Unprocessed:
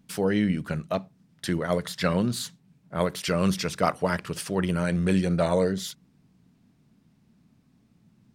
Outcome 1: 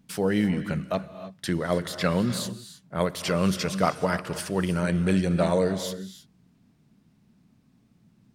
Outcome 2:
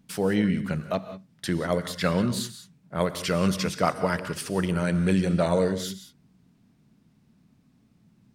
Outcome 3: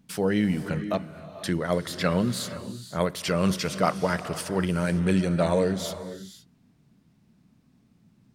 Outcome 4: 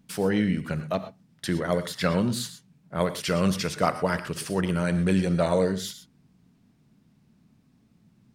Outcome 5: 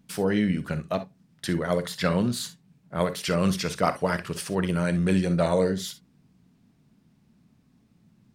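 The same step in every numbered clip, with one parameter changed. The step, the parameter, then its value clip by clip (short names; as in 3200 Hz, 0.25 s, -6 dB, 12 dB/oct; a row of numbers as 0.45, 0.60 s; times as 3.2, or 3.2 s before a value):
non-linear reverb, gate: 340, 210, 530, 140, 80 ms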